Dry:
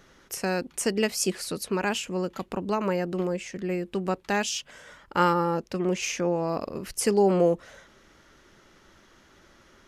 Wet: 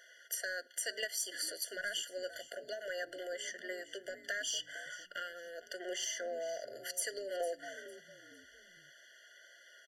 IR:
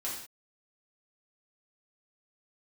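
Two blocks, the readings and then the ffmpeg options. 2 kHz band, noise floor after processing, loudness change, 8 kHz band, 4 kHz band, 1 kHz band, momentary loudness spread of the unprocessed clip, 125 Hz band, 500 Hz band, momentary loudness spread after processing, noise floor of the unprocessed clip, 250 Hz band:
−6.0 dB, −61 dBFS, −12.5 dB, −6.0 dB, −5.0 dB, −20.5 dB, 10 LU, below −35 dB, −15.0 dB, 21 LU, −58 dBFS, −27.5 dB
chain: -filter_complex "[0:a]highpass=frequency=730:width=0.5412,highpass=frequency=730:width=1.3066,acompressor=threshold=-33dB:ratio=6,asoftclip=type=tanh:threshold=-24.5dB,flanger=delay=1.9:depth=1.8:regen=88:speed=0.21:shape=triangular,asplit=4[link_01][link_02][link_03][link_04];[link_02]adelay=454,afreqshift=-120,volume=-16dB[link_05];[link_03]adelay=908,afreqshift=-240,volume=-26.2dB[link_06];[link_04]adelay=1362,afreqshift=-360,volume=-36.3dB[link_07];[link_01][link_05][link_06][link_07]amix=inputs=4:normalize=0,asplit=2[link_08][link_09];[1:a]atrim=start_sample=2205,lowpass=7300[link_10];[link_09][link_10]afir=irnorm=-1:irlink=0,volume=-23.5dB[link_11];[link_08][link_11]amix=inputs=2:normalize=0,afftfilt=real='re*eq(mod(floor(b*sr/1024/700),2),0)':imag='im*eq(mod(floor(b*sr/1024/700),2),0)':win_size=1024:overlap=0.75,volume=7dB"

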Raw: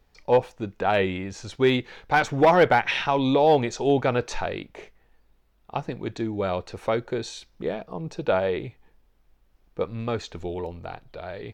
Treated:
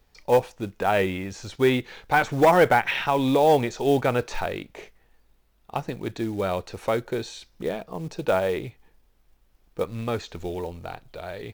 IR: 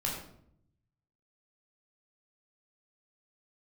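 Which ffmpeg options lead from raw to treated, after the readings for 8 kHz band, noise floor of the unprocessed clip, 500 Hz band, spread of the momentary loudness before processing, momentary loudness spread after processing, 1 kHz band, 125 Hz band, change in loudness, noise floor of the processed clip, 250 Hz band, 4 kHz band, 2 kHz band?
+1.0 dB, −63 dBFS, 0.0 dB, 17 LU, 17 LU, +0.5 dB, 0.0 dB, 0.0 dB, −63 dBFS, 0.0 dB, −1.5 dB, +0.5 dB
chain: -filter_complex "[0:a]acrossover=split=3000[link_01][link_02];[link_02]acompressor=threshold=-43dB:ratio=4:attack=1:release=60[link_03];[link_01][link_03]amix=inputs=2:normalize=0,highshelf=frequency=3700:gain=5.5,acrusher=bits=6:mode=log:mix=0:aa=0.000001"

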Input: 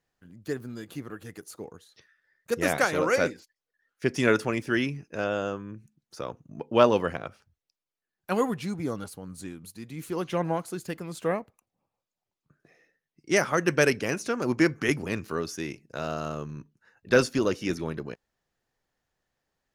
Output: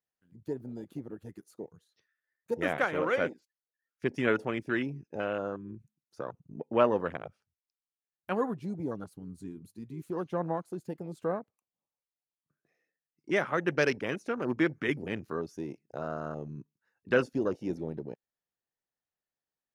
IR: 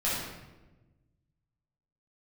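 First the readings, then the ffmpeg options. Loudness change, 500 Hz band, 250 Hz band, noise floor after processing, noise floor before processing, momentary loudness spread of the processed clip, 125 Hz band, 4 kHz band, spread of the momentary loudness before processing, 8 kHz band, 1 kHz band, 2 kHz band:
−5.0 dB, −4.5 dB, −4.5 dB, below −85 dBFS, below −85 dBFS, 17 LU, −5.5 dB, −8.5 dB, 18 LU, below −15 dB, −4.5 dB, −5.0 dB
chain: -filter_complex "[0:a]afwtdn=0.02,lowshelf=frequency=68:gain=-11.5,asplit=2[link_01][link_02];[link_02]acompressor=threshold=-38dB:ratio=6,volume=0dB[link_03];[link_01][link_03]amix=inputs=2:normalize=0,volume=-5.5dB"

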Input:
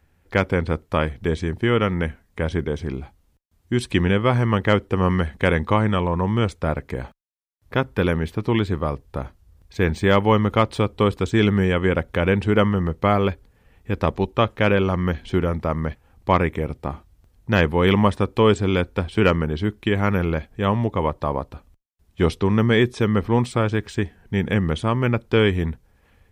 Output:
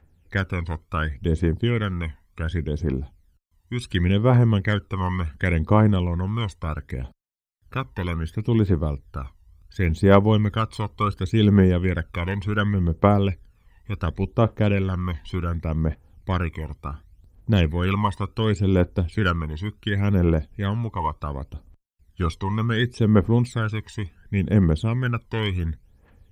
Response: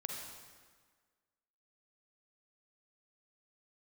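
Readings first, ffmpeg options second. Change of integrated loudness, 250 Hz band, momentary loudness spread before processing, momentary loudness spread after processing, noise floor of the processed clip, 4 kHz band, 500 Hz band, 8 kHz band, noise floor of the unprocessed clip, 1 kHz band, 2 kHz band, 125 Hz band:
−2.0 dB, −1.5 dB, 11 LU, 15 LU, −60 dBFS, −3.5 dB, −5.0 dB, can't be measured, −62 dBFS, −4.0 dB, −5.0 dB, +1.0 dB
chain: -af "aphaser=in_gain=1:out_gain=1:delay=1.1:decay=0.74:speed=0.69:type=triangular,volume=-7.5dB"

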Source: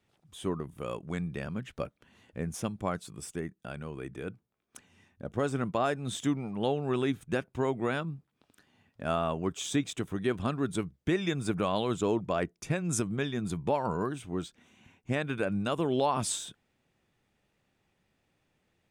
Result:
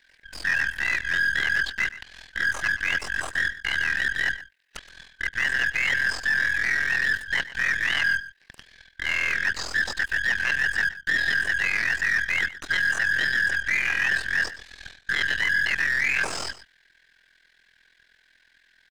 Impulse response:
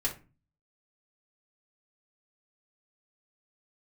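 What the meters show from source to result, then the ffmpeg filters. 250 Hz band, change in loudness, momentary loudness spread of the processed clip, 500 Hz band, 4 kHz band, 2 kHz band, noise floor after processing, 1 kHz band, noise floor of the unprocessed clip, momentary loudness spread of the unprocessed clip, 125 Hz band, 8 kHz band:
−14.5 dB, +9.0 dB, 8 LU, −13.5 dB, +11.0 dB, +22.5 dB, −63 dBFS, −3.5 dB, −77 dBFS, 11 LU, −9.5 dB, +1.5 dB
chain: -filter_complex "[0:a]afftfilt=real='real(if(lt(b,272),68*(eq(floor(b/68),0)*3+eq(floor(b/68),1)*0+eq(floor(b/68),2)*1+eq(floor(b/68),3)*2)+mod(b,68),b),0)':imag='imag(if(lt(b,272),68*(eq(floor(b/68),0)*3+eq(floor(b/68),1)*0+eq(floor(b/68),2)*1+eq(floor(b/68),3)*2)+mod(b,68),b),0)':win_size=2048:overlap=0.75,highpass=frequency=300:poles=1,areverse,acompressor=threshold=-35dB:ratio=20,areverse,aeval=exprs='0.0282*(abs(mod(val(0)/0.0282+3,4)-2)-1)':channel_layout=same,aeval=exprs='val(0)*sin(2*PI*21*n/s)':channel_layout=same,apsyclip=34.5dB,asoftclip=type=tanh:threshold=-12dB,aeval=exprs='0.251*(cos(1*acos(clip(val(0)/0.251,-1,1)))-cos(1*PI/2))+0.0562*(cos(3*acos(clip(val(0)/0.251,-1,1)))-cos(3*PI/2))+0.0316*(cos(4*acos(clip(val(0)/0.251,-1,1)))-cos(4*PI/2))':channel_layout=same,highshelf=frequency=8300:gain=-10.5,acrossover=split=4900[link_01][link_02];[link_02]acompressor=threshold=-34dB:ratio=4:attack=1:release=60[link_03];[link_01][link_03]amix=inputs=2:normalize=0,aecho=1:1:122:0.158,volume=-8dB"

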